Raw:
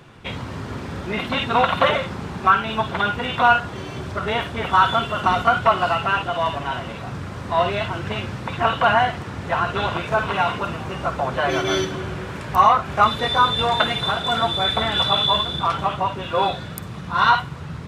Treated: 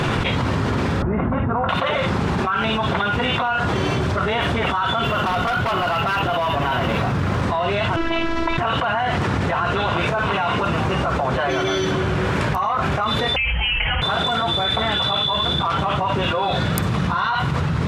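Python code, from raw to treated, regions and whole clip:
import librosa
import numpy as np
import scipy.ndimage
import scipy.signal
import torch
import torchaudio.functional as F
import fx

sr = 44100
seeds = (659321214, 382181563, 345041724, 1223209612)

y = fx.chain(x, sr, fx.lowpass(hz=1500.0, slope=24),
    fx.low_shelf(hz=150.0, db=11.5), at=(1.02, 1.69))
y = fx.chain(y, sr, fx.high_shelf(hz=10000.0, db=5.0),
    fx.clip_hard(threshold_db=-18.5),
    fx.resample_linear(factor=3), at=(5.04, 7.42))
y = fx.chain(y, sr, fx.robotise(hz=331.0),
    fx.air_absorb(metres=86.0), at=(7.96, 8.58))
y = fx.chain(y, sr, fx.highpass(hz=460.0, slope=24),
    fx.freq_invert(carrier_hz=3600), at=(13.36, 14.02))
y = fx.high_shelf(y, sr, hz=8500.0, db=-8.5)
y = fx.env_flatten(y, sr, amount_pct=100)
y = y * librosa.db_to_amplitude(-10.0)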